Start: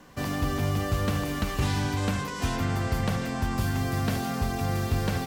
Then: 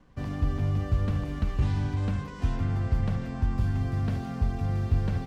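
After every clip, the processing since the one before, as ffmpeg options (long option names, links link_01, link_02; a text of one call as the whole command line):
ffmpeg -i in.wav -af "aeval=exprs='sgn(val(0))*max(abs(val(0))-0.00112,0)':channel_layout=same,aemphasis=mode=reproduction:type=bsi,volume=-8.5dB" out.wav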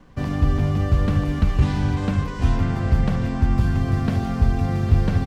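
ffmpeg -i in.wav -af "bandreject=frequency=50:width_type=h:width=6,bandreject=frequency=100:width_type=h:width=6,aecho=1:1:806:0.224,volume=9dB" out.wav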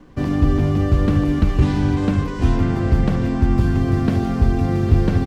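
ffmpeg -i in.wav -af "equalizer=frequency=330:width_type=o:width=0.72:gain=9,volume=1.5dB" out.wav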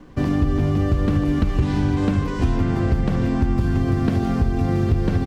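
ffmpeg -i in.wav -af "acompressor=threshold=-17dB:ratio=4,volume=1.5dB" out.wav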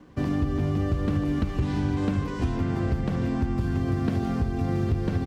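ffmpeg -i in.wav -af "highpass=51,volume=-5.5dB" out.wav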